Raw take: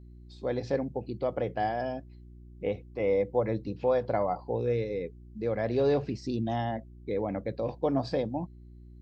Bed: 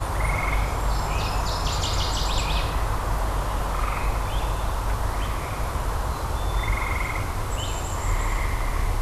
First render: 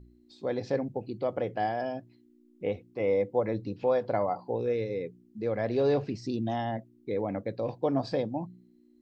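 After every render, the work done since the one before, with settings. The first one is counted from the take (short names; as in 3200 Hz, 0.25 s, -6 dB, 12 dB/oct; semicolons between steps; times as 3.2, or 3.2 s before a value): de-hum 60 Hz, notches 3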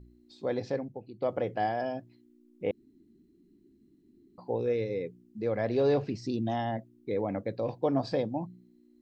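0.59–1.22 fade out quadratic, to -10 dB; 2.71–4.38 room tone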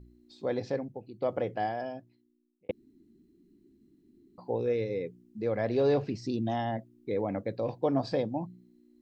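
1.38–2.69 fade out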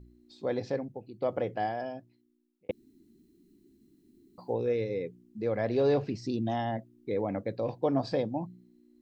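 2.7–4.52 high shelf 3300 Hz -> 4200 Hz +10 dB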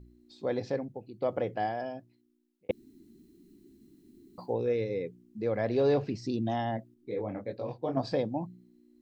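2.7–4.46 gain +4.5 dB; 6.94–7.97 detuned doubles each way 52 cents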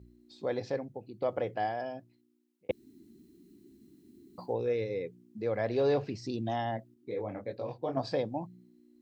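HPF 57 Hz; dynamic EQ 210 Hz, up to -5 dB, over -42 dBFS, Q 0.88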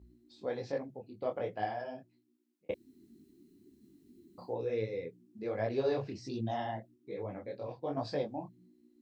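detuned doubles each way 43 cents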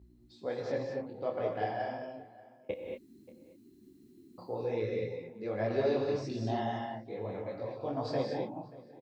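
outdoor echo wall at 100 m, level -19 dB; non-linear reverb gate 0.25 s rising, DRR 1 dB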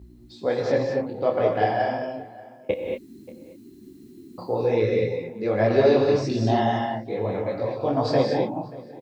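gain +12 dB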